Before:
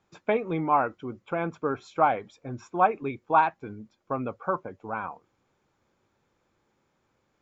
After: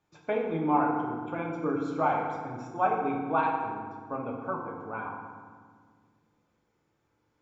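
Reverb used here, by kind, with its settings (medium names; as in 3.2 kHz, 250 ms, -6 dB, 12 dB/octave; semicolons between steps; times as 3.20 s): FDN reverb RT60 1.7 s, low-frequency decay 1.55×, high-frequency decay 0.6×, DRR -1.5 dB; trim -7 dB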